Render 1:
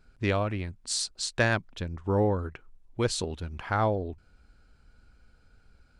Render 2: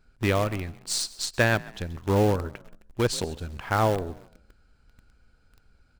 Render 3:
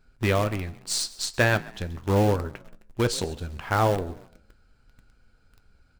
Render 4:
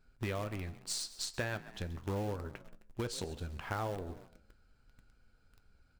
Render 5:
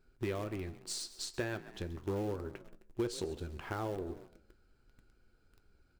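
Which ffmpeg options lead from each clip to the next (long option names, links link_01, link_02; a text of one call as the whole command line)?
ffmpeg -i in.wav -filter_complex "[0:a]asplit=4[link_01][link_02][link_03][link_04];[link_02]adelay=133,afreqshift=42,volume=-19dB[link_05];[link_03]adelay=266,afreqshift=84,volume=-27.6dB[link_06];[link_04]adelay=399,afreqshift=126,volume=-36.3dB[link_07];[link_01][link_05][link_06][link_07]amix=inputs=4:normalize=0,asplit=2[link_08][link_09];[link_09]acrusher=bits=5:dc=4:mix=0:aa=0.000001,volume=-4dB[link_10];[link_08][link_10]amix=inputs=2:normalize=0,volume=-1.5dB" out.wav
ffmpeg -i in.wav -af "flanger=delay=7.3:depth=4.6:regen=-70:speed=0.4:shape=triangular,volume=5dB" out.wav
ffmpeg -i in.wav -af "acompressor=threshold=-28dB:ratio=4,volume=-6.5dB" out.wav
ffmpeg -i in.wav -filter_complex "[0:a]equalizer=frequency=360:width_type=o:width=0.5:gain=11,asplit=2[link_01][link_02];[link_02]asoftclip=type=hard:threshold=-35dB,volume=-11dB[link_03];[link_01][link_03]amix=inputs=2:normalize=0,volume=-4dB" out.wav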